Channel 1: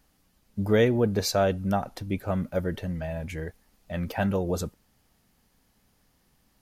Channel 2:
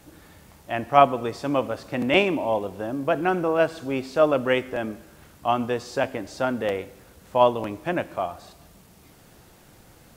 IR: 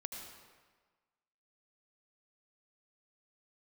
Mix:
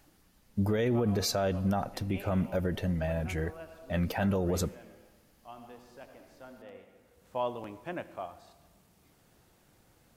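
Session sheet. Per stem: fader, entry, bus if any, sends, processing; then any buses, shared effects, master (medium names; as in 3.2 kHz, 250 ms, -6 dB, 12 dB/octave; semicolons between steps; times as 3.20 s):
+0.5 dB, 0.00 s, send -20 dB, none
-13.5 dB, 0.00 s, send -12 dB, auto duck -22 dB, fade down 0.30 s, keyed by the first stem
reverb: on, RT60 1.4 s, pre-delay 71 ms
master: peak limiter -21 dBFS, peak gain reduction 11 dB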